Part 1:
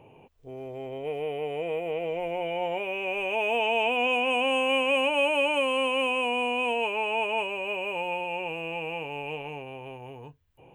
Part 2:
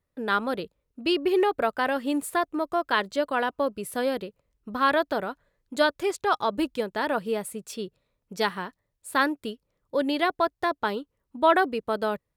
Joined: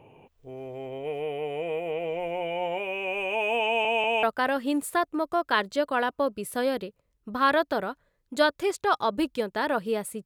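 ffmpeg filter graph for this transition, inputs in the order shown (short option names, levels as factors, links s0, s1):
-filter_complex "[0:a]apad=whole_dur=10.25,atrim=end=10.25,asplit=3[s0][s1][s2];[s0]atrim=end=3.852[s3];[s1]atrim=start=3.658:end=3.852[s4];[s2]atrim=start=3.658:end=3.852[s5];[1:a]atrim=start=1.628:end=7.65[s6];[s3][s4]acrossfade=d=0.004:c1=hsin:c2=hsin[s7];[s7][s5]acrossfade=d=0.004:c1=hsin:c2=hsin[s8];[s8][s6]acrossfade=d=0.004:c1=hsin:c2=hsin"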